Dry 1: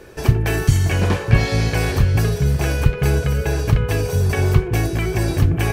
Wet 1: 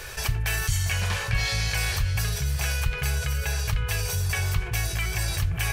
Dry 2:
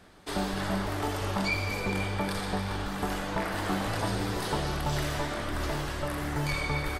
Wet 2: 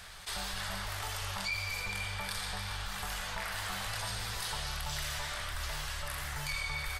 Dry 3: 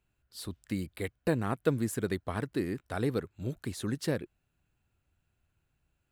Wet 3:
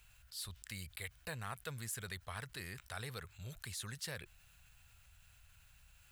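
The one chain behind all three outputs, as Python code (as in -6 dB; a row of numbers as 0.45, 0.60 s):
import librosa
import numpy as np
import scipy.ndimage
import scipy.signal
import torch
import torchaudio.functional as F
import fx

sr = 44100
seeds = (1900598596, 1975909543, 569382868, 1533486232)

y = fx.tone_stack(x, sr, knobs='10-0-10')
y = fx.env_flatten(y, sr, amount_pct=50)
y = y * 10.0 ** (-2.5 / 20.0)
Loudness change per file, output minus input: -7.5, -5.0, -11.5 LU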